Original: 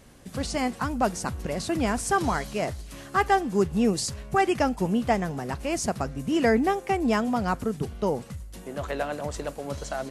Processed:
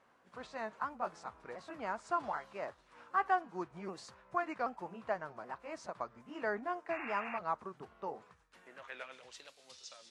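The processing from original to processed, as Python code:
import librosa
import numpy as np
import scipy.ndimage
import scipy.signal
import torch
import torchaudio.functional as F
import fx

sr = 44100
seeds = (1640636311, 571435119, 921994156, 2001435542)

y = fx.pitch_ramps(x, sr, semitones=-3.0, every_ms=777)
y = fx.filter_sweep_bandpass(y, sr, from_hz=1100.0, to_hz=4700.0, start_s=8.23, end_s=9.74, q=1.6)
y = fx.spec_paint(y, sr, seeds[0], shape='noise', start_s=6.9, length_s=0.49, low_hz=700.0, high_hz=2800.0, level_db=-39.0)
y = y * 10.0 ** (-5.0 / 20.0)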